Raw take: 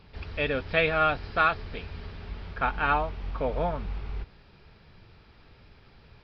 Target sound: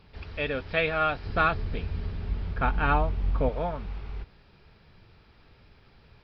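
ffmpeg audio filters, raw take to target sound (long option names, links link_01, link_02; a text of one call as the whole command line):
ffmpeg -i in.wav -filter_complex "[0:a]asettb=1/sr,asplit=3[link_01][link_02][link_03];[link_01]atrim=end=1.254[link_04];[link_02]atrim=start=1.25:end=3.49,asetpts=PTS-STARTPTS,afade=type=in:duration=0.004:curve=qsin,afade=type=out:start_time=2.236:duration=0.004:curve=qsin,lowshelf=frequency=370:gain=10.5[link_05];[link_03]atrim=start=3.486[link_06];[link_04][link_05]acrossfade=duration=0.004:curve1=hsin:curve2=qsin[link_07];[link_07][link_06]acrossfade=duration=0.004:curve1=qsin:curve2=hsin,volume=-2dB" out.wav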